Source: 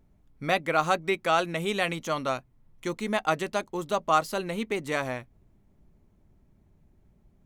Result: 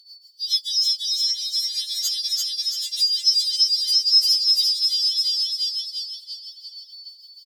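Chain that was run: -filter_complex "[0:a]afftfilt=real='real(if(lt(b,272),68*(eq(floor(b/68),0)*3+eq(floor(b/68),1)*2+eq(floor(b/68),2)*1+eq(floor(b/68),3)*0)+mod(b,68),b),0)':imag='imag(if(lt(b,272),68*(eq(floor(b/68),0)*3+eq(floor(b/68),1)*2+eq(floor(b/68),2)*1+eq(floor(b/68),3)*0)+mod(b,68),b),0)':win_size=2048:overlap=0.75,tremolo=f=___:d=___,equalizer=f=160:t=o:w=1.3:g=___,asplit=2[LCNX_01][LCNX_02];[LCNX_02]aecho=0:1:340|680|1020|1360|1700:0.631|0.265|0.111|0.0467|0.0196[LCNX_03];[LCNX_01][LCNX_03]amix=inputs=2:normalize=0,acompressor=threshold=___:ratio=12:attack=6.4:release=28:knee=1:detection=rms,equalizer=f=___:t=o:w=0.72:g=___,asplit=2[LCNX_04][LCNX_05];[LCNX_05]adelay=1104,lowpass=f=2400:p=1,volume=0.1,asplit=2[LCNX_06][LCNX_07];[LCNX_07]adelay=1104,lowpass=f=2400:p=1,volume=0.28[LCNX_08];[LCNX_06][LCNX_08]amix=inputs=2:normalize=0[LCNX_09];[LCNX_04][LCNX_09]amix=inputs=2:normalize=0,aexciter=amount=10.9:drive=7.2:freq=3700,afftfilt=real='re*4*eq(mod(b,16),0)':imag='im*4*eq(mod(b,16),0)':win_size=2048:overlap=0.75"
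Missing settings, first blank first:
6.6, 0.92, -14.5, 0.0112, 3100, 8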